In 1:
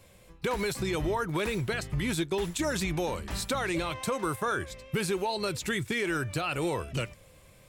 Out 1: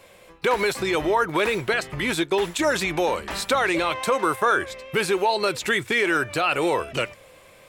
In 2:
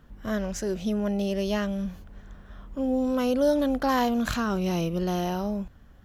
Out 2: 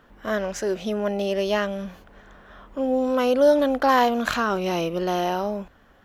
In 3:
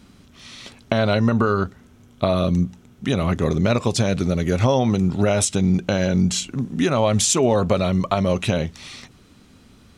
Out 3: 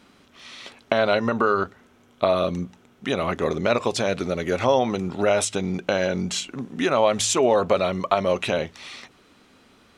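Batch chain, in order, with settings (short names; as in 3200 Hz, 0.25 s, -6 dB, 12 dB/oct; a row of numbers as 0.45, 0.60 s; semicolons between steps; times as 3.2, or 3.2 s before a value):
tone controls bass -15 dB, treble -7 dB; de-hum 53.37 Hz, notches 2; match loudness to -23 LUFS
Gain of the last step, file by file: +10.5, +7.5, +1.5 dB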